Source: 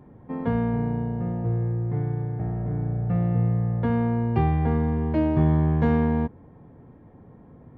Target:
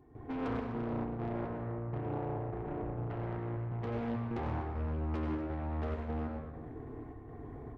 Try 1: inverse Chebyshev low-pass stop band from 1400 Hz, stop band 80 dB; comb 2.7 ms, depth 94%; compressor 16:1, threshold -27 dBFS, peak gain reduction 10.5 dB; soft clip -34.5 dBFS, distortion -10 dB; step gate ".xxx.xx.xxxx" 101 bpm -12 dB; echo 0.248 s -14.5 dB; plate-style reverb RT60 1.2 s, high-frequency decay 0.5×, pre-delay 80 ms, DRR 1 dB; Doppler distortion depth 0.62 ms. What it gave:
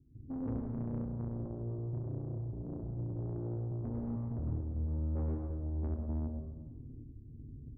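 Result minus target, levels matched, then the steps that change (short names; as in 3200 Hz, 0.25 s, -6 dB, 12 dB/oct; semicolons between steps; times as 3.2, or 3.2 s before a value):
1000 Hz band -14.0 dB
remove: inverse Chebyshev low-pass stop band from 1400 Hz, stop band 80 dB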